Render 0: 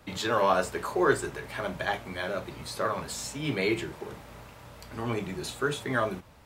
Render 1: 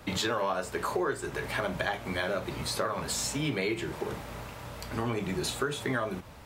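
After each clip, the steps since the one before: compression 8:1, threshold -33 dBFS, peak gain reduction 15.5 dB; trim +6 dB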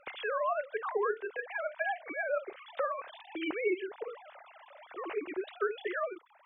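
formants replaced by sine waves; trim -3.5 dB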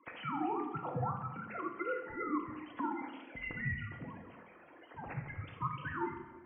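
coarse spectral quantiser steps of 30 dB; simulated room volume 730 m³, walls mixed, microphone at 1.2 m; mistuned SSB -280 Hz 420–3400 Hz; trim -5 dB

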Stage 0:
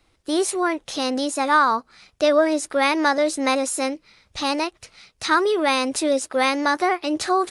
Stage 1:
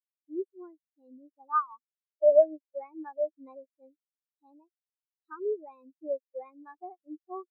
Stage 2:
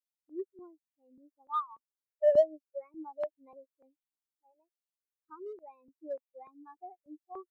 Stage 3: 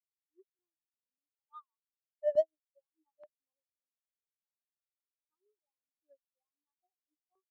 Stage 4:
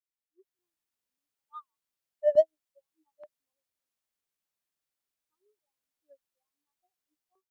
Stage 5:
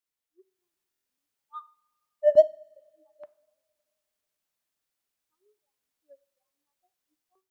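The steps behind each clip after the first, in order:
spectral contrast expander 4:1; trim -3.5 dB
in parallel at -10 dB: hard clipper -26 dBFS, distortion -4 dB; on the sum: stepped phaser 3.4 Hz 380–1600 Hz; trim -4.5 dB
upward expansion 2.5:1, over -48 dBFS; trim -3 dB
level rider gain up to 11.5 dB; trim -5 dB
two-slope reverb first 0.47 s, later 2 s, from -17 dB, DRR 15.5 dB; buffer glitch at 0.90 s, samples 1024, times 6; trim +4 dB

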